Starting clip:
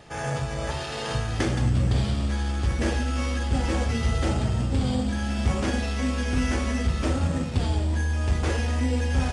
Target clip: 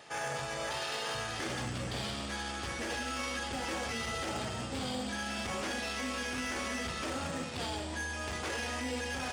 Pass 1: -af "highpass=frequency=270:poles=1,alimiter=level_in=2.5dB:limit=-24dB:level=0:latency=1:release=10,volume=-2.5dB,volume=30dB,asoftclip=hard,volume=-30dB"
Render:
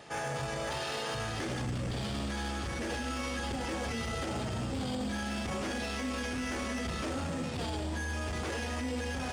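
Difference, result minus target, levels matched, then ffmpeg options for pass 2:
250 Hz band +3.5 dB
-af "highpass=frequency=790:poles=1,alimiter=level_in=2.5dB:limit=-24dB:level=0:latency=1:release=10,volume=-2.5dB,volume=30dB,asoftclip=hard,volume=-30dB"

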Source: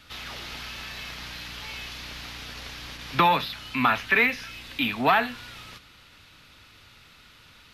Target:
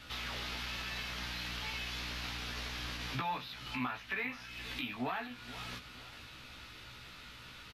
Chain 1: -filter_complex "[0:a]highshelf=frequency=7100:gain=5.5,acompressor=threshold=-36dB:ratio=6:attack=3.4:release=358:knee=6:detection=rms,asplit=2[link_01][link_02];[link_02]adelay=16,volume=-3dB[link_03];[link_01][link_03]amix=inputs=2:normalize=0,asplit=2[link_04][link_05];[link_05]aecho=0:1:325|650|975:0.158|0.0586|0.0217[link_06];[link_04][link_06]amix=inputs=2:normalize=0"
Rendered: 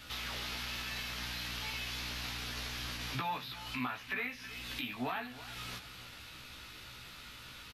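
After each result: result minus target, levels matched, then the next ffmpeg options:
echo 148 ms early; 8,000 Hz band +3.5 dB
-filter_complex "[0:a]highshelf=frequency=7100:gain=5.5,acompressor=threshold=-36dB:ratio=6:attack=3.4:release=358:knee=6:detection=rms,asplit=2[link_01][link_02];[link_02]adelay=16,volume=-3dB[link_03];[link_01][link_03]amix=inputs=2:normalize=0,asplit=2[link_04][link_05];[link_05]aecho=0:1:473|946|1419:0.158|0.0586|0.0217[link_06];[link_04][link_06]amix=inputs=2:normalize=0"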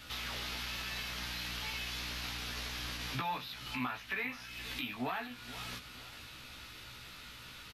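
8,000 Hz band +3.5 dB
-filter_complex "[0:a]highshelf=frequency=7100:gain=-4,acompressor=threshold=-36dB:ratio=6:attack=3.4:release=358:knee=6:detection=rms,asplit=2[link_01][link_02];[link_02]adelay=16,volume=-3dB[link_03];[link_01][link_03]amix=inputs=2:normalize=0,asplit=2[link_04][link_05];[link_05]aecho=0:1:473|946|1419:0.158|0.0586|0.0217[link_06];[link_04][link_06]amix=inputs=2:normalize=0"

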